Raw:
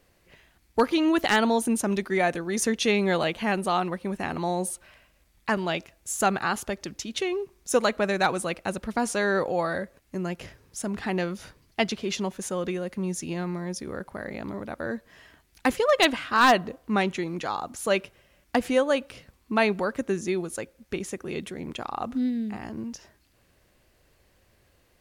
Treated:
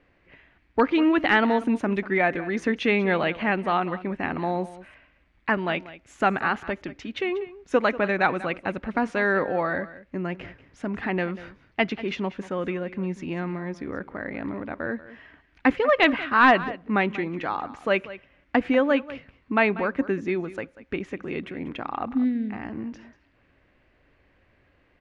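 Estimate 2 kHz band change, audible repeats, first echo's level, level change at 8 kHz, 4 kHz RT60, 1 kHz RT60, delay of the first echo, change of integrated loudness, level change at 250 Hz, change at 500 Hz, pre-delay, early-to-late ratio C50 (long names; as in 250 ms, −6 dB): +4.0 dB, 1, −16.5 dB, below −20 dB, no reverb audible, no reverb audible, 190 ms, +1.5 dB, +2.0 dB, +0.5 dB, no reverb audible, no reverb audible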